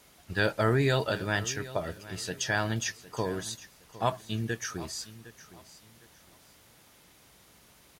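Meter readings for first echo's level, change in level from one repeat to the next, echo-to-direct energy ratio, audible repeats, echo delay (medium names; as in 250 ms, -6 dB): -17.0 dB, -11.0 dB, -16.5 dB, 2, 759 ms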